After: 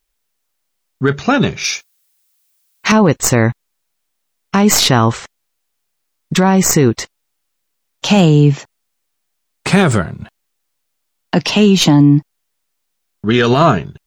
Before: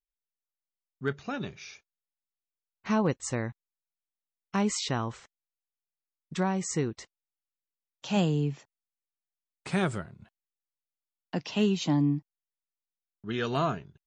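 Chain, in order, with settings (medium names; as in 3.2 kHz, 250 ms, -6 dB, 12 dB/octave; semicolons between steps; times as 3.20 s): tracing distortion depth 0.035 ms; 1.64–2.92 s: tilt EQ +3.5 dB/octave; loudness maximiser +23 dB; trim -1 dB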